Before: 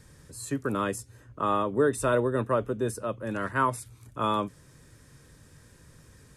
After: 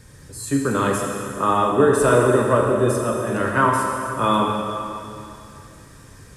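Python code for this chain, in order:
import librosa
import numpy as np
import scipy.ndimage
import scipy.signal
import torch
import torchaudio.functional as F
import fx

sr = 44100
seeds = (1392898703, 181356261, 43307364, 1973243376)

y = fx.rev_plate(x, sr, seeds[0], rt60_s=2.7, hf_ratio=0.95, predelay_ms=0, drr_db=-1.5)
y = F.gain(torch.from_numpy(y), 6.0).numpy()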